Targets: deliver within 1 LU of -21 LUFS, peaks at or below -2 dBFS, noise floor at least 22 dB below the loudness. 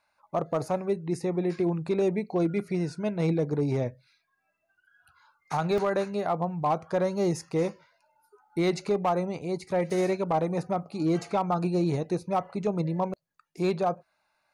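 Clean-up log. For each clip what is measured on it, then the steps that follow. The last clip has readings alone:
clipped 0.4%; flat tops at -18.5 dBFS; dropouts 2; longest dropout 1.4 ms; loudness -28.5 LUFS; peak -18.5 dBFS; loudness target -21.0 LUFS
-> clip repair -18.5 dBFS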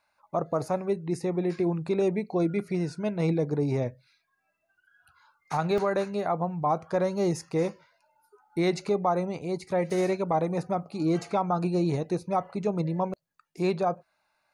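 clipped 0.0%; dropouts 2; longest dropout 1.4 ms
-> interpolate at 5.78/9.9, 1.4 ms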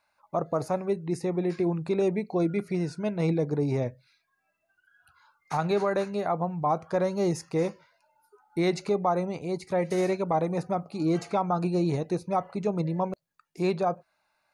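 dropouts 0; loudness -28.5 LUFS; peak -14.0 dBFS; loudness target -21.0 LUFS
-> gain +7.5 dB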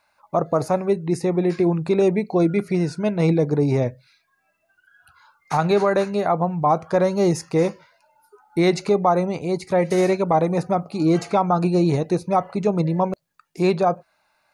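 loudness -21.0 LUFS; peak -6.5 dBFS; noise floor -68 dBFS

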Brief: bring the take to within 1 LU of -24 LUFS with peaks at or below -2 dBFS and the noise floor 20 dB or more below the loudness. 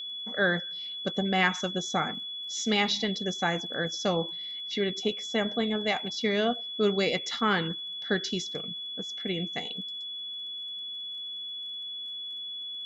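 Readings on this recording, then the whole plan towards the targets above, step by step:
ticks 24/s; steady tone 3400 Hz; tone level -35 dBFS; loudness -30.0 LUFS; peak -11.0 dBFS; loudness target -24.0 LUFS
-> de-click; notch 3400 Hz, Q 30; gain +6 dB

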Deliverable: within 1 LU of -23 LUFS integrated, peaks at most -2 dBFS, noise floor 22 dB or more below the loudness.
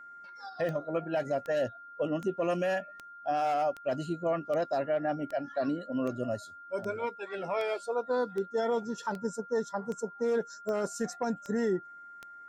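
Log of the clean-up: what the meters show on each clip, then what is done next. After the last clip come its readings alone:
clicks 16; steady tone 1400 Hz; tone level -46 dBFS; loudness -32.5 LUFS; peak -21.0 dBFS; loudness target -23.0 LUFS
-> de-click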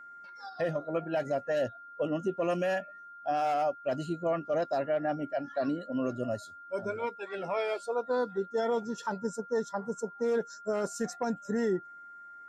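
clicks 0; steady tone 1400 Hz; tone level -46 dBFS
-> notch 1400 Hz, Q 30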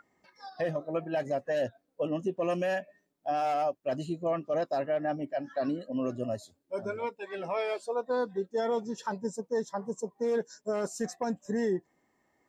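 steady tone none; loudness -32.5 LUFS; peak -21.5 dBFS; loudness target -23.0 LUFS
-> gain +9.5 dB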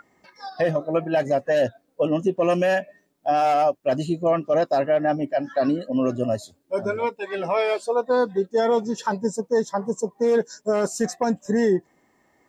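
loudness -23.0 LUFS; peak -12.0 dBFS; noise floor -66 dBFS

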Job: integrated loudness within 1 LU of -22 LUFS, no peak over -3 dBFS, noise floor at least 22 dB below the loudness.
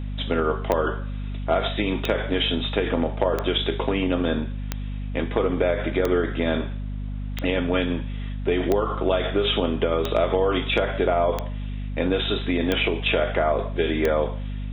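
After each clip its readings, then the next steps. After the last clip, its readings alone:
clicks 11; hum 50 Hz; harmonics up to 250 Hz; hum level -27 dBFS; loudness -24.5 LUFS; peak -7.0 dBFS; loudness target -22.0 LUFS
-> de-click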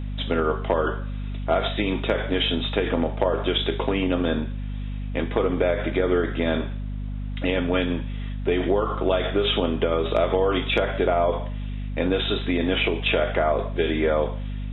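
clicks 0; hum 50 Hz; harmonics up to 250 Hz; hum level -27 dBFS
-> notches 50/100/150/200/250 Hz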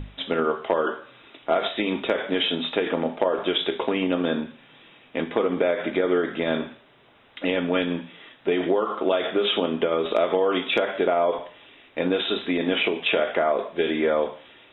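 hum none; loudness -24.5 LUFS; peak -8.5 dBFS; loudness target -22.0 LUFS
-> gain +2.5 dB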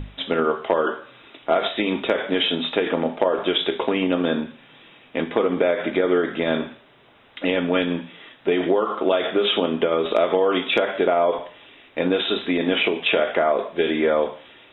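loudness -22.0 LUFS; peak -6.0 dBFS; noise floor -52 dBFS

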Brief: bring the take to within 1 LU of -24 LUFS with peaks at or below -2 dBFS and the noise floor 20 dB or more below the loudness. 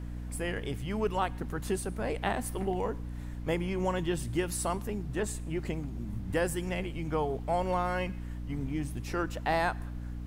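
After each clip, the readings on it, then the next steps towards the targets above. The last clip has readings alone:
hum 60 Hz; harmonics up to 300 Hz; hum level -36 dBFS; noise floor -39 dBFS; noise floor target -53 dBFS; loudness -33.0 LUFS; peak -16.0 dBFS; loudness target -24.0 LUFS
-> de-hum 60 Hz, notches 5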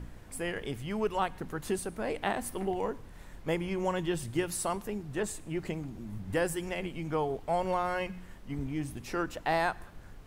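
hum none; noise floor -50 dBFS; noise floor target -54 dBFS
-> noise print and reduce 6 dB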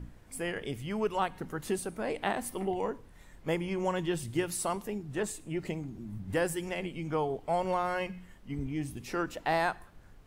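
noise floor -55 dBFS; loudness -34.0 LUFS; peak -16.0 dBFS; loudness target -24.0 LUFS
-> gain +10 dB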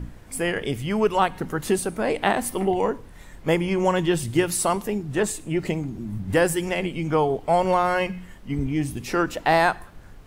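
loudness -24.0 LUFS; peak -6.0 dBFS; noise floor -45 dBFS

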